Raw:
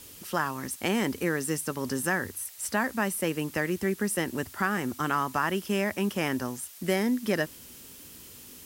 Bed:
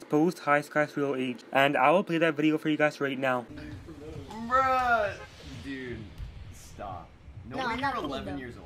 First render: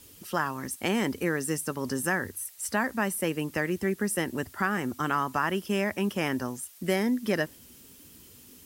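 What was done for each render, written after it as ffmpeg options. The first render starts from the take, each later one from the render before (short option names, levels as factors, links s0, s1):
-af "afftdn=nr=6:nf=-48"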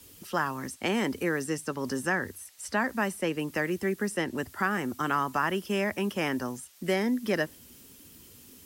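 -filter_complex "[0:a]acrossover=split=180|640|7400[s0][s1][s2][s3];[s0]alimiter=level_in=6.68:limit=0.0631:level=0:latency=1,volume=0.15[s4];[s3]acompressor=threshold=0.00355:ratio=6[s5];[s4][s1][s2][s5]amix=inputs=4:normalize=0"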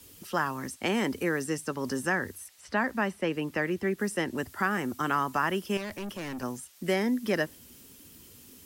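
-filter_complex "[0:a]asettb=1/sr,asplit=3[s0][s1][s2];[s0]atrim=end=2.484[s3];[s1]atrim=start=2.48:end=3.99,asetpts=PTS-STARTPTS,afade=t=in:d=0.004:c=qsin,afade=t=out:st=1.506:d=0.004:c=qsin,acrossover=split=4600[s4][s5];[s5]acompressor=threshold=0.00158:ratio=4:attack=1:release=60[s6];[s4][s6]amix=inputs=2:normalize=0[s7];[s2]atrim=start=3.986[s8];[s3][s7]acrossfade=d=0.004:c1=hsin:c2=qsin[s9];[s9][s8]acrossfade=d=0.004:c1=qsin:c2=hsin,asettb=1/sr,asplit=3[s10][s11][s12];[s10]atrim=end=5.774[s13];[s11]atrim=start=5.77:end=6.43,asetpts=PTS-STARTPTS,afade=t=in:d=0.004:c=qsin,afade=t=out:st=0.656:d=0.004:c=qsin,aeval=exprs='(tanh(50.1*val(0)+0.2)-tanh(0.2))/50.1':c=same[s14];[s12]atrim=start=6.426[s15];[s13][s14]acrossfade=d=0.004:c1=hsin:c2=qsin[s16];[s16][s15]acrossfade=d=0.004:c1=qsin:c2=hsin"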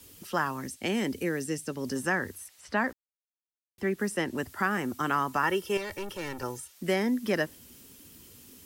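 -filter_complex "[0:a]asettb=1/sr,asplit=3[s0][s1][s2];[s0]atrim=end=0.614[s3];[s1]atrim=start=0.61:end=1.96,asetpts=PTS-STARTPTS,afade=t=in:d=0.004:c=qsin,afade=t=out:st=1.346:d=0.004:c=qsin,equalizer=f=1100:t=o:w=1.2:g=-9.5[s4];[s2]atrim=start=1.956[s5];[s3][s4]acrossfade=d=0.004:c1=hsin:c2=qsin[s6];[s6][s5]acrossfade=d=0.004:c1=qsin:c2=hsin,asettb=1/sr,asplit=3[s7][s8][s9];[s7]atrim=end=5.434[s10];[s8]atrim=start=5.43:end=6.73,asetpts=PTS-STARTPTS,afade=t=in:d=0.004:c=qsin,afade=t=out:st=1.296:d=0.004:c=qsin,aecho=1:1:2.2:0.65,atrim=end_sample=57330[s11];[s9]atrim=start=6.726[s12];[s10][s11]acrossfade=d=0.004:c1=hsin:c2=qsin[s13];[s13][s12]acrossfade=d=0.004:c1=qsin:c2=hsin,asplit=3[s14][s15][s16];[s14]atrim=end=2.93,asetpts=PTS-STARTPTS,afade=t=out:st=2.926:d=0.004:c=hsin[s17];[s15]atrim=start=2.93:end=3.78,asetpts=PTS-STARTPTS,volume=0[s18];[s16]atrim=start=3.78,asetpts=PTS-STARTPTS,afade=t=in:d=0.004:c=hsin[s19];[s17][s18][s19]concat=n=3:v=0:a=1"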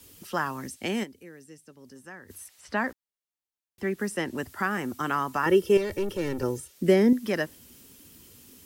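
-filter_complex "[0:a]asettb=1/sr,asplit=3[s0][s1][s2];[s0]atrim=end=5.464[s3];[s1]atrim=start=5.46:end=7.13,asetpts=PTS-STARTPTS,afade=t=in:d=0.004:c=qsin,afade=t=out:st=1.666:d=0.004:c=qsin,lowshelf=f=610:t=q:w=1.5:g=7.5[s4];[s2]atrim=start=7.126[s5];[s3][s4]acrossfade=d=0.004:c1=hsin:c2=qsin[s6];[s6][s5]acrossfade=d=0.004:c1=qsin:c2=hsin,asplit=3[s7][s8][s9];[s7]atrim=end=1.17,asetpts=PTS-STARTPTS,afade=t=out:st=1.03:d=0.14:c=exp:silence=0.149624[s10];[s8]atrim=start=1.17:end=2.17,asetpts=PTS-STARTPTS,volume=0.15[s11];[s9]atrim=start=2.17,asetpts=PTS-STARTPTS,afade=t=in:d=0.14:c=exp:silence=0.149624[s12];[s10][s11][s12]concat=n=3:v=0:a=1"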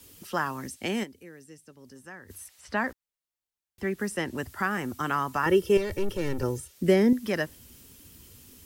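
-af "asubboost=boost=2:cutoff=140"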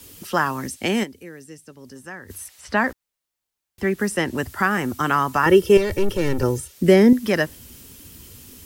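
-af "volume=2.51,alimiter=limit=0.708:level=0:latency=1"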